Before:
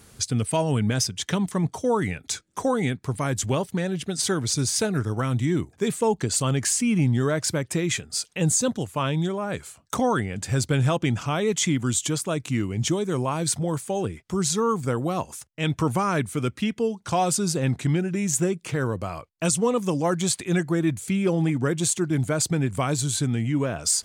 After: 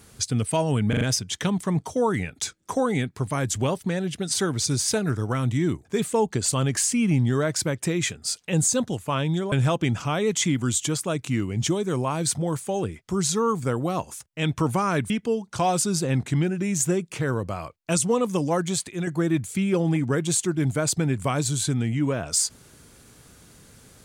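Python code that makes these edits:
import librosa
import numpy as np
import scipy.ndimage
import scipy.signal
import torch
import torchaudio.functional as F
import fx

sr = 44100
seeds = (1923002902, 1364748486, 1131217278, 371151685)

y = fx.edit(x, sr, fx.stutter(start_s=0.89, slice_s=0.04, count=4),
    fx.cut(start_s=9.4, length_s=1.33),
    fx.cut(start_s=16.31, length_s=0.32),
    fx.fade_out_to(start_s=20.03, length_s=0.57, floor_db=-7.0), tone=tone)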